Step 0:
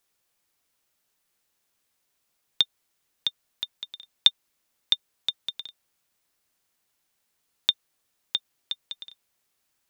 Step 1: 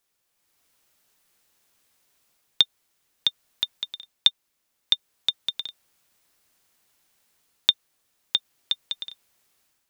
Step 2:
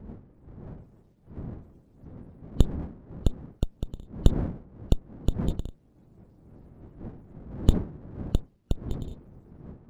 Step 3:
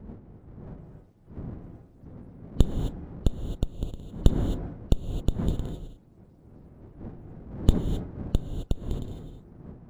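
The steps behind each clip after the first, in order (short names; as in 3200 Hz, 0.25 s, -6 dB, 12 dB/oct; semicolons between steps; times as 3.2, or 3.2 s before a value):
AGC gain up to 8.5 dB; gain -1 dB
wind noise 220 Hz -39 dBFS; loudest bins only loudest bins 64; running maximum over 17 samples; gain +1 dB
reverb, pre-delay 3 ms, DRR 5.5 dB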